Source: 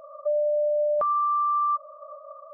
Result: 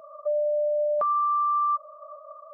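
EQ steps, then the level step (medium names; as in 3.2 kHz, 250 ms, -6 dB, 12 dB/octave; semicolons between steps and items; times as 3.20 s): high-pass 170 Hz 6 dB/octave; band-stop 540 Hz, Q 12; 0.0 dB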